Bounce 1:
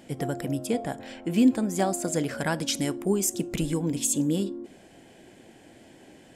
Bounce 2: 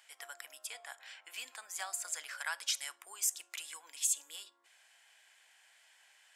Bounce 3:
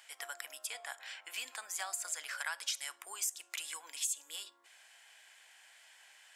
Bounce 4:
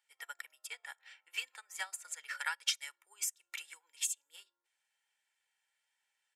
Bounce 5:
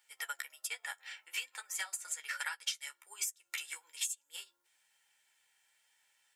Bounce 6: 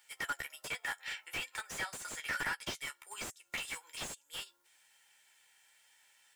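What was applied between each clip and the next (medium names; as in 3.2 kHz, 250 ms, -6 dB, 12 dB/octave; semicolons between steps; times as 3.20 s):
high-pass 1.1 kHz 24 dB/octave; trim -5 dB
compression 2.5:1, threshold -41 dBFS, peak gain reduction 9.5 dB; trim +4.5 dB
comb 2.2 ms, depth 70%; dynamic bell 2.1 kHz, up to +7 dB, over -53 dBFS, Q 0.96; upward expansion 2.5:1, over -46 dBFS; trim +1.5 dB
treble shelf 5.2 kHz +5.5 dB; compression 4:1, threshold -44 dBFS, peak gain reduction 16 dB; flange 1.2 Hz, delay 8.8 ms, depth 5.9 ms, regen -29%; trim +11.5 dB
slew-rate limiter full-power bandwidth 21 Hz; trim +6.5 dB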